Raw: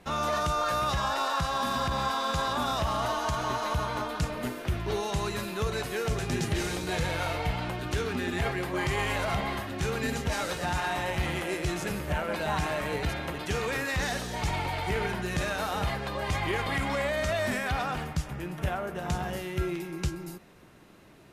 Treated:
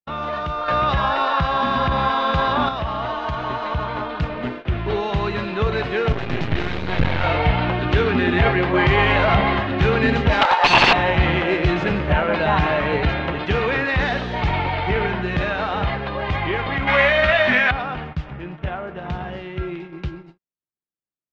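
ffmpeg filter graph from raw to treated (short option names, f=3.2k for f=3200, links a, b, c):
-filter_complex "[0:a]asettb=1/sr,asplit=3[a][b][c];[a]atrim=end=0.684[d];[b]atrim=start=0.68:end=2.69,asetpts=PTS-STARTPTS,afade=t=in:d=0.004:c=qsin,afade=t=out:st=2.006:d=0.004:c=qsin,acontrast=73,highshelf=f=10k:g=-4.5[e];[c]atrim=start=2.686[f];[d][e]acrossfade=d=0.004:c1=hsin:c2=qsin[g];[g][f]acrossfade=d=0.004:c1=qsin:c2=hsin,asettb=1/sr,asplit=3[h][i][j];[h]atrim=end=6.124[k];[i]atrim=start=6.12:end=7.24,asetpts=PTS-STARTPTS,afade=t=in:d=0.004:c=qsin,afade=t=out:st=1.116:d=0.004:c=qsin,highpass=f=100:p=1,asubboost=boost=8:cutoff=190,aeval=exprs='max(val(0),0)':c=same[l];[j]atrim=start=7.236[m];[k][l]acrossfade=d=0.004:c1=hsin:c2=qsin[n];[n][m]acrossfade=d=0.004:c1=qsin:c2=hsin,asettb=1/sr,asplit=3[o][p][q];[o]atrim=end=10.414[r];[p]atrim=start=10.41:end=10.93,asetpts=PTS-STARTPTS,afade=t=in:d=0.004:c=qsin,afade=t=out:st=0.516:d=0.004:c=qsin,highpass=f=870:t=q:w=9.4,aeval=exprs='(mod(7.94*val(0)+1,2)-1)/7.94':c=same[s];[q]atrim=start=10.926[t];[r][s]acrossfade=d=0.004:c1=hsin:c2=qsin[u];[u][t]acrossfade=d=0.004:c1=qsin:c2=hsin,asettb=1/sr,asplit=3[v][w][x];[v]atrim=end=16.874[y];[w]atrim=start=16.87:end=17.71,asetpts=PTS-STARTPTS,afade=t=in:d=0.004:c=qsin,afade=t=out:st=0.836:d=0.004:c=qsin,equalizer=f=2.3k:t=o:w=2.5:g=11.5,adynamicsmooth=sensitivity=6.5:basefreq=1.2k,asplit=2[z][aa];[aa]adelay=16,volume=-5dB[ab];[z][ab]amix=inputs=2:normalize=0,atrim=end_sample=37044[ac];[x]atrim=start=17.706[ad];[y][ac]acrossfade=d=0.004:c1=hsin:c2=qsin[ae];[ae][ad]acrossfade=d=0.004:c1=qsin:c2=hsin,agate=range=-51dB:threshold=-37dB:ratio=16:detection=peak,dynaudnorm=f=340:g=31:m=11.5dB,lowpass=f=3.5k:w=0.5412,lowpass=f=3.5k:w=1.3066,volume=2.5dB"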